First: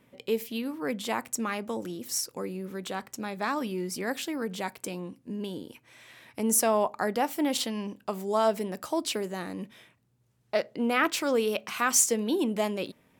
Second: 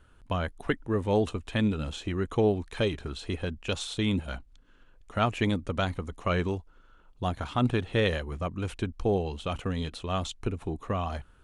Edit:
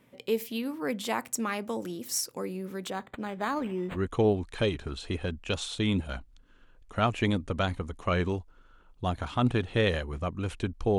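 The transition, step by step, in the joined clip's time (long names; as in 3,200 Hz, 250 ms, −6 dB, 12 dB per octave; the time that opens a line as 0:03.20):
first
0:02.90–0:03.98: linearly interpolated sample-rate reduction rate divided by 8×
0:03.95: continue with second from 0:02.14, crossfade 0.06 s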